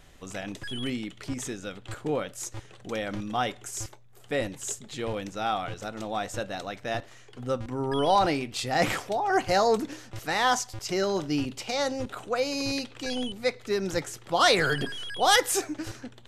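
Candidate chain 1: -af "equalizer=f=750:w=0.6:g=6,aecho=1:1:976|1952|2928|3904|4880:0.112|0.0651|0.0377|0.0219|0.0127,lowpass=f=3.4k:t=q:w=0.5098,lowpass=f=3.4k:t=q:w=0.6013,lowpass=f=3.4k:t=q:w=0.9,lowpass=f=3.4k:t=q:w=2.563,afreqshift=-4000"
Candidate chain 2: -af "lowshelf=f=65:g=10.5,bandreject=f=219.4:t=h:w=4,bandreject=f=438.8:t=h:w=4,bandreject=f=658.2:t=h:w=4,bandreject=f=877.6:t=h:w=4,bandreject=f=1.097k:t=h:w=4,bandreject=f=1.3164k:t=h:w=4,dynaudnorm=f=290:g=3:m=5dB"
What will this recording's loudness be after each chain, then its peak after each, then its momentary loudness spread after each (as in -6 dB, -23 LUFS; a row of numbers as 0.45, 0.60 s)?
-21.0, -24.0 LUFS; -5.0, -3.0 dBFS; 17, 13 LU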